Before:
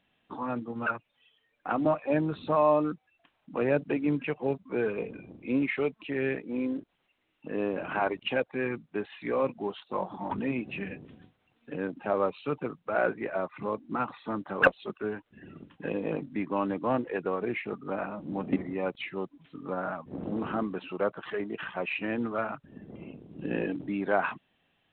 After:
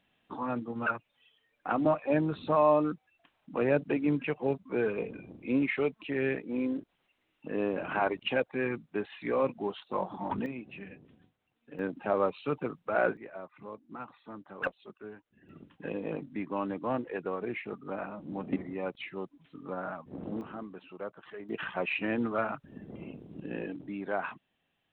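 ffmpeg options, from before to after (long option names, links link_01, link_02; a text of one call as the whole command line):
ffmpeg -i in.wav -af "asetnsamples=nb_out_samples=441:pad=0,asendcmd='10.46 volume volume -9dB;11.79 volume volume -0.5dB;13.17 volume volume -12dB;15.49 volume volume -4dB;20.41 volume volume -11dB;21.49 volume volume 0.5dB;23.4 volume volume -6.5dB',volume=-0.5dB" out.wav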